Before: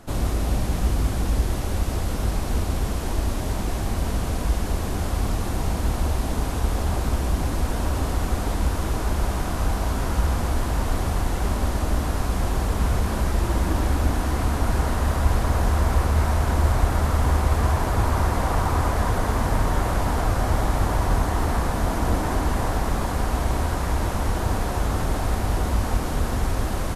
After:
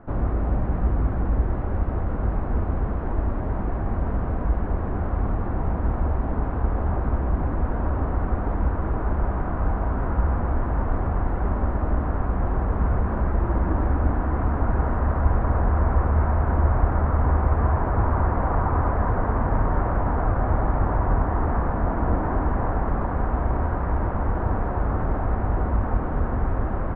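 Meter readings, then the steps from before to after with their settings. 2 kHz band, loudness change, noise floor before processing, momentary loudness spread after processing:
−4.0 dB, −0.5 dB, −27 dBFS, 5 LU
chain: low-pass filter 1,600 Hz 24 dB per octave

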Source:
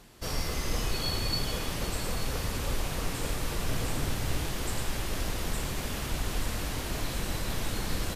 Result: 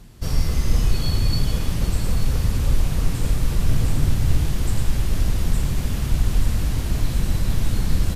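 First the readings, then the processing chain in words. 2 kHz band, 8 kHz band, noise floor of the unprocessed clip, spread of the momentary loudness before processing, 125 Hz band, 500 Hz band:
0.0 dB, +2.0 dB, −35 dBFS, 3 LU, +13.5 dB, +1.5 dB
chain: bass and treble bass +14 dB, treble +2 dB

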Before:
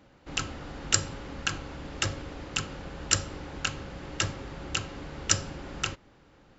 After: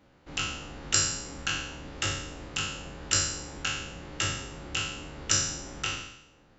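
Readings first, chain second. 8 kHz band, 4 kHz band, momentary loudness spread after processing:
can't be measured, +2.0 dB, 12 LU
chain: peak hold with a decay on every bin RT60 0.80 s
level −4.5 dB

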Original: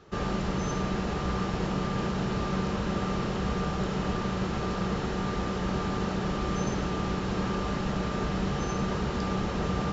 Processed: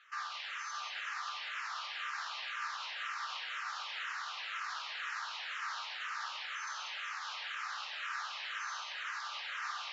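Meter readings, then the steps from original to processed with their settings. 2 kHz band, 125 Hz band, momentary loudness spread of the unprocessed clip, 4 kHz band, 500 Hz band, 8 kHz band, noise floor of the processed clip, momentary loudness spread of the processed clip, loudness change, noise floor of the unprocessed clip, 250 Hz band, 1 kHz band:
0.0 dB, below −40 dB, 1 LU, −0.5 dB, −31.5 dB, can't be measured, −44 dBFS, 1 LU, −9.5 dB, −32 dBFS, below −40 dB, −7.0 dB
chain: inverse Chebyshev high-pass filter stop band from 280 Hz, stop band 70 dB
high-shelf EQ 5,000 Hz +9.5 dB
brickwall limiter −31 dBFS, peak gain reduction 6.5 dB
high-frequency loss of the air 180 metres
echo with a time of its own for lows and highs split 2,000 Hz, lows 612 ms, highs 189 ms, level −4 dB
frequency shifter mixed with the dry sound −2 Hz
level +4 dB

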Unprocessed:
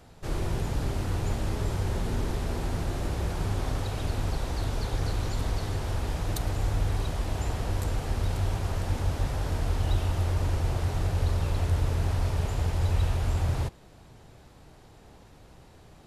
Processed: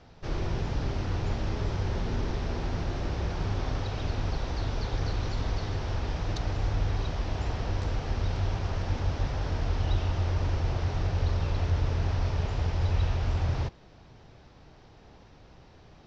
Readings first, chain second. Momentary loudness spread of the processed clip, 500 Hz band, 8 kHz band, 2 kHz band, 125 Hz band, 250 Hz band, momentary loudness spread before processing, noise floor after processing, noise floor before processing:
4 LU, −1.0 dB, −7.5 dB, 0.0 dB, −1.0 dB, −1.0 dB, 4 LU, −54 dBFS, −53 dBFS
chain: elliptic low-pass filter 5,800 Hz, stop band 70 dB

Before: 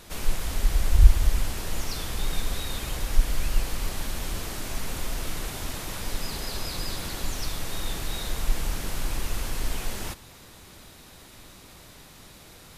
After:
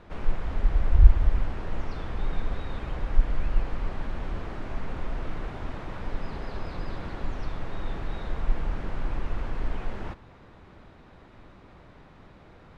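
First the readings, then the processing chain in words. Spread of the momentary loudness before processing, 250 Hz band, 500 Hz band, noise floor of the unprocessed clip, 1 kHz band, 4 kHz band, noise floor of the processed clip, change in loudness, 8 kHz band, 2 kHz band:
19 LU, 0.0 dB, 0.0 dB, −49 dBFS, −0.5 dB, −15.0 dB, −52 dBFS, −1.5 dB, −27.5 dB, −5.0 dB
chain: low-pass filter 1,600 Hz 12 dB per octave

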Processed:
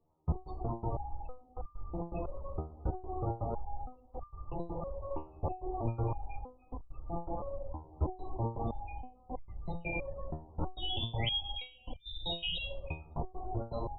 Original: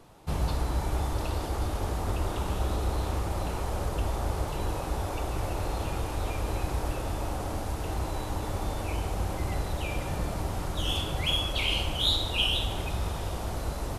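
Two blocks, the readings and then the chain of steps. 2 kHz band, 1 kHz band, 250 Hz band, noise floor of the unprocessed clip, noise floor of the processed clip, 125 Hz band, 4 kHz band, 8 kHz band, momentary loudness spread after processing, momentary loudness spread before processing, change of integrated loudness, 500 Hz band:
−10.5 dB, −7.0 dB, −6.5 dB, −34 dBFS, −61 dBFS, −8.0 dB, −9.0 dB, below −40 dB, 13 LU, 7 LU, −8.5 dB, −6.0 dB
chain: brickwall limiter −23 dBFS, peak gain reduction 9.5 dB
spectral peaks only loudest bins 32
gate pattern "...x.xxx.xxxxx" 163 BPM −24 dB
step-sequenced resonator 3.1 Hz 78–1,200 Hz
level +12 dB

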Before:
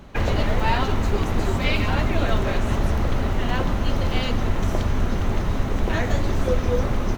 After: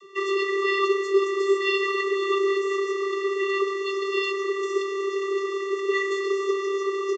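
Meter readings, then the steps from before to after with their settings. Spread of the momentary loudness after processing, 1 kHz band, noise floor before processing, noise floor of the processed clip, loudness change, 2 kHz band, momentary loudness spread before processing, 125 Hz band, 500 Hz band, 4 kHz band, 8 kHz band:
5 LU, −1.5 dB, −25 dBFS, −30 dBFS, −1.0 dB, +2.0 dB, 3 LU, below −40 dB, +5.5 dB, −1.0 dB, can't be measured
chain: tilt shelving filter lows −7.5 dB, about 1,100 Hz
channel vocoder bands 32, square 392 Hz
far-end echo of a speakerphone 230 ms, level −14 dB
level +3.5 dB

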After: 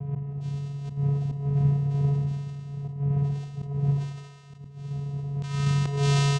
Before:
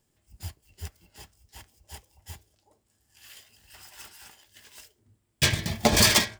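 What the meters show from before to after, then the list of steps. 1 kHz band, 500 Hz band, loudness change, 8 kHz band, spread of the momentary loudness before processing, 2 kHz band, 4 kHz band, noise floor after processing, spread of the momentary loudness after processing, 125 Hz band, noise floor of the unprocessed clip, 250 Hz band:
−4.0 dB, −2.5 dB, −6.0 dB, below −10 dB, 7 LU, below −10 dB, below −10 dB, −44 dBFS, 12 LU, +13.0 dB, −73 dBFS, +4.5 dB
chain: peak hold with a decay on every bin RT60 2.77 s
wind on the microphone 190 Hz −27 dBFS
in parallel at −1 dB: downward compressor 10 to 1, threshold −27 dBFS, peak gain reduction 17 dB
on the sum: channel vocoder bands 4, square 141 Hz
feedback echo with a band-pass in the loop 66 ms, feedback 79%, band-pass 670 Hz, level −5 dB
volume swells 274 ms
single-tap delay 155 ms −16 dB
level that may fall only so fast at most 70 dB per second
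level −3.5 dB

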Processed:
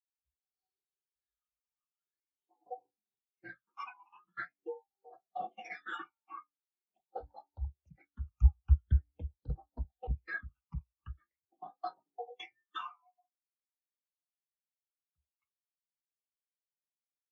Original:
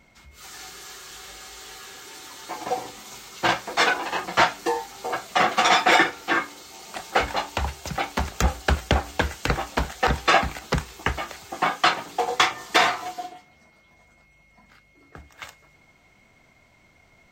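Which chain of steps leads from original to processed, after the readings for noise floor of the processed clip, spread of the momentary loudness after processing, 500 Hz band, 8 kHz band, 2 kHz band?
below −85 dBFS, 21 LU, −22.5 dB, below −40 dB, −24.0 dB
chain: all-pass phaser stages 8, 0.44 Hz, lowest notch 500–2,500 Hz
every bin expanded away from the loudest bin 2.5 to 1
level −5 dB

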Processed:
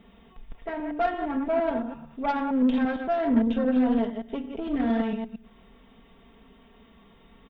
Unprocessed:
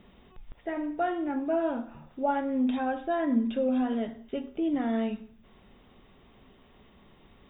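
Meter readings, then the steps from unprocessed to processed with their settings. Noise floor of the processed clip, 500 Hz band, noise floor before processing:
−56 dBFS, +2.5 dB, −58 dBFS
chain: delay that plays each chunk backwards 114 ms, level −6 dB
harmonic generator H 6 −20 dB, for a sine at −14.5 dBFS
comb filter 4.4 ms, depth 56%

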